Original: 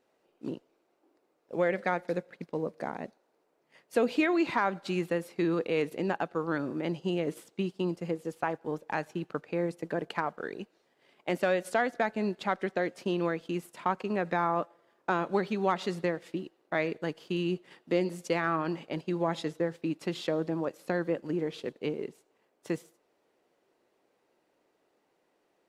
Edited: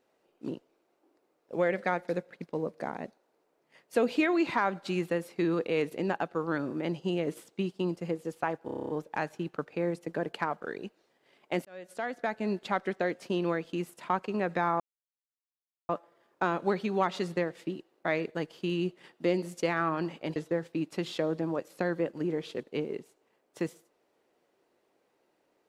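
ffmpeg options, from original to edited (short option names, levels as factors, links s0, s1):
-filter_complex "[0:a]asplit=12[s0][s1][s2][s3][s4][s5][s6][s7][s8][s9][s10][s11];[s0]atrim=end=8.682[s12];[s1]atrim=start=8.648:end=8.682[s13];[s2]atrim=start=8.648:end=8.682[s14];[s3]atrim=start=8.648:end=8.682[s15];[s4]atrim=start=8.648:end=8.682[s16];[s5]atrim=start=8.648:end=8.682[s17];[s6]atrim=start=8.648:end=8.682[s18];[s7]atrim=start=8.648:end=8.682[s19];[s8]atrim=start=8.648:end=11.41,asetpts=PTS-STARTPTS,afade=t=out:st=2.758:d=0.004:c=hsin[s20];[s9]atrim=start=11.41:end=14.56,asetpts=PTS-STARTPTS,afade=t=in:d=0.88,afade=t=out:st=3.146:d=0.004:c=hsin,apad=pad_dur=1.09[s21];[s10]atrim=start=14.56:end=19.032,asetpts=PTS-STARTPTS,afade=t=in:d=0.004:c=hsin[s22];[s11]atrim=start=19.448[s23];[s12][s13]acrossfade=d=0.004:c1=hsin:c2=hsin[s24];[s24][s14]acrossfade=d=0.004:c1=hsin:c2=hsin[s25];[s25][s15]acrossfade=d=0.004:c1=hsin:c2=hsin[s26];[s26][s16]acrossfade=d=0.004:c1=hsin:c2=hsin[s27];[s27][s17]acrossfade=d=0.004:c1=hsin:c2=hsin[s28];[s28][s18]acrossfade=d=0.004:c1=hsin:c2=hsin[s29];[s29][s19]acrossfade=d=0.004:c1=hsin:c2=hsin[s30];[s20][s21][s22]concat=n=3:v=0:a=1[s31];[s30][s31]acrossfade=d=0.004:c1=hsin:c2=hsin[s32];[s32][s23]acrossfade=d=0.004:c1=hsin:c2=hsin"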